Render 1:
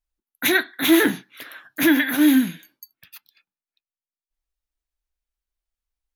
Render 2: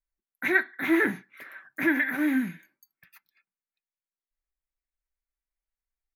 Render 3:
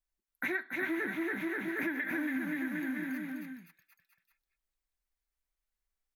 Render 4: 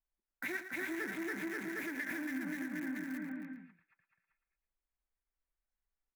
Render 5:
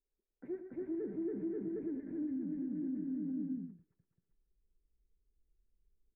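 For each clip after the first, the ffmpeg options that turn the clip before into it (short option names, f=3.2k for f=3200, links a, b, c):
-filter_complex "[0:a]acrossover=split=3900[a][b];[b]acompressor=threshold=-32dB:ratio=4:attack=1:release=60[c];[a][c]amix=inputs=2:normalize=0,highshelf=f=2.6k:t=q:w=3:g=-6.5,aecho=1:1:5.2:0.33,volume=-7.5dB"
-af "aecho=1:1:280|532|758.8|962.9|1147:0.631|0.398|0.251|0.158|0.1,acompressor=threshold=-32dB:ratio=6"
-filter_complex "[0:a]acrossover=split=2500[a][b];[a]alimiter=level_in=5.5dB:limit=-24dB:level=0:latency=1:release=202,volume=-5.5dB[c];[b]acrusher=bits=7:mix=0:aa=0.000001[d];[c][d]amix=inputs=2:normalize=0,aecho=1:1:113:0.299,volume=-2.5dB"
-af "asubboost=boost=7.5:cutoff=220,alimiter=level_in=11dB:limit=-24dB:level=0:latency=1:release=170,volume=-11dB,lowpass=f=430:t=q:w=4.7"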